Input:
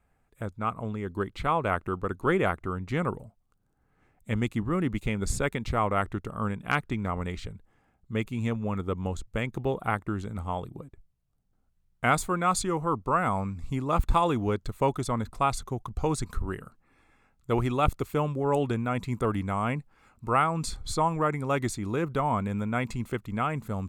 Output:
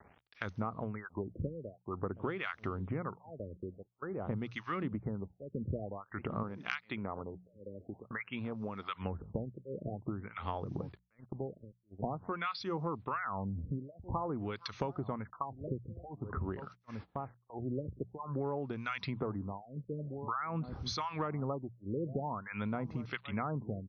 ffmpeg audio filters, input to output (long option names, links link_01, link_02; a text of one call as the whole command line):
ffmpeg -i in.wav -filter_complex "[0:a]highpass=frequency=78:width=0.5412,highpass=frequency=78:width=1.3066,asplit=2[link_01][link_02];[link_02]adelay=1749,volume=-19dB,highshelf=frequency=4000:gain=-39.4[link_03];[link_01][link_03]amix=inputs=2:normalize=0,acrossover=split=1300[link_04][link_05];[link_04]aeval=exprs='val(0)*(1-1/2+1/2*cos(2*PI*1.4*n/s))':channel_layout=same[link_06];[link_05]aeval=exprs='val(0)*(1-1/2-1/2*cos(2*PI*1.4*n/s))':channel_layout=same[link_07];[link_06][link_07]amix=inputs=2:normalize=0,acrusher=bits=11:mix=0:aa=0.000001,acompressor=threshold=-38dB:ratio=16,agate=range=-27dB:threshold=-58dB:ratio=16:detection=peak,asettb=1/sr,asplit=3[link_08][link_09][link_10];[link_08]atrim=end=6.434[link_11];[link_09]atrim=start=6.43:end=8.89,asetpts=PTS-STARTPTS,afade=type=in:duration=0.004:curve=qsin,afade=type=out:start_time=2.456:duration=0.004:curve=qsin,lowshelf=frequency=180:gain=-11.5[link_12];[link_10]atrim=start=8.886[link_13];[link_11][link_12]acrossfade=duration=0.004:curve1=hsin:curve2=qsin[link_14];[link_14][link_13]acrossfade=duration=0.004:curve1=qsin:curve2=hsin,acompressor=mode=upward:threshold=-37dB:ratio=2.5,bandreject=frequency=60:width_type=h:width=6,bandreject=frequency=120:width_type=h:width=6,bandreject=frequency=180:width_type=h:width=6,afftfilt=real='re*lt(b*sr/1024,570*pow(6500/570,0.5+0.5*sin(2*PI*0.49*pts/sr)))':imag='im*lt(b*sr/1024,570*pow(6500/570,0.5+0.5*sin(2*PI*0.49*pts/sr)))':win_size=1024:overlap=0.75,volume=5dB" out.wav